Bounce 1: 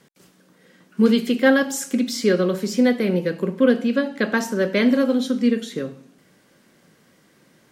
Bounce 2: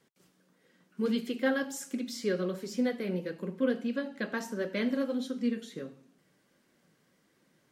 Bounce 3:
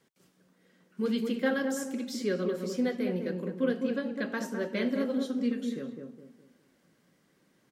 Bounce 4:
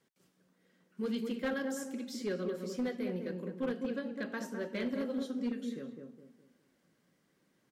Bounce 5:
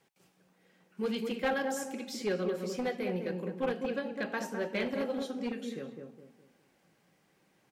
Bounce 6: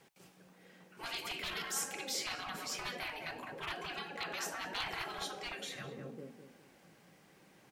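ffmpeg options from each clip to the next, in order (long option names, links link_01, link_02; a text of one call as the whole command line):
ffmpeg -i in.wav -af "flanger=delay=2.1:depth=5.5:regen=-51:speed=1.5:shape=triangular,volume=-8.5dB" out.wav
ffmpeg -i in.wav -filter_complex "[0:a]asplit=2[link_01][link_02];[link_02]adelay=207,lowpass=frequency=840:poles=1,volume=-3.5dB,asplit=2[link_03][link_04];[link_04]adelay=207,lowpass=frequency=840:poles=1,volume=0.39,asplit=2[link_05][link_06];[link_06]adelay=207,lowpass=frequency=840:poles=1,volume=0.39,asplit=2[link_07][link_08];[link_08]adelay=207,lowpass=frequency=840:poles=1,volume=0.39,asplit=2[link_09][link_10];[link_10]adelay=207,lowpass=frequency=840:poles=1,volume=0.39[link_11];[link_01][link_03][link_05][link_07][link_09][link_11]amix=inputs=6:normalize=0" out.wav
ffmpeg -i in.wav -af "asoftclip=type=hard:threshold=-23dB,volume=-5.5dB" out.wav
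ffmpeg -i in.wav -af "equalizer=frequency=250:width_type=o:width=0.33:gain=-7,equalizer=frequency=800:width_type=o:width=0.33:gain=9,equalizer=frequency=2500:width_type=o:width=0.33:gain=6,volume=4dB" out.wav
ffmpeg -i in.wav -af "afftfilt=real='re*lt(hypot(re,im),0.0282)':imag='im*lt(hypot(re,im),0.0282)':win_size=1024:overlap=0.75,volume=6.5dB" out.wav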